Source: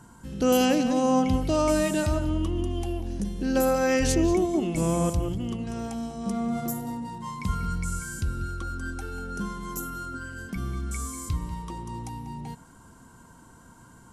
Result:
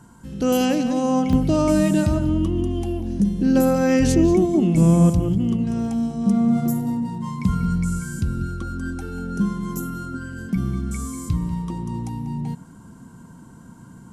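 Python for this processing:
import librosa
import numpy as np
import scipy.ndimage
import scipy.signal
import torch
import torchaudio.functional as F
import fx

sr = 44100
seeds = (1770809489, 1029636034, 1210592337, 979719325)

y = fx.peak_eq(x, sr, hz=180.0, db=fx.steps((0.0, 4.0), (1.33, 13.0)), octaves=1.7)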